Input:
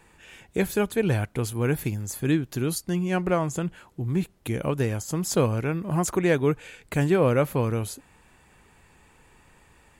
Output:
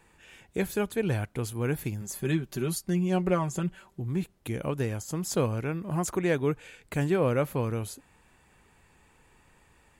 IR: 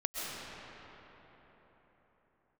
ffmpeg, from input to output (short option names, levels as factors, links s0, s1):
-filter_complex "[0:a]asettb=1/sr,asplit=3[s0][s1][s2];[s0]atrim=end=2.014[s3];[s1]atrim=start=2.01:end=4,asetpts=PTS-STARTPTS,afade=t=in:d=0.004:c=qsin,afade=t=out:st=1.986:d=0.004:c=qsin,aecho=1:1:5.2:0.65,atrim=end_sample=87759[s4];[s2]atrim=start=3.996[s5];[s3][s4]acrossfade=d=0.004:c1=hsin:c2=qsin[s6];[s6][s5]acrossfade=d=0.004:c1=qsin:c2=hsin,volume=0.596"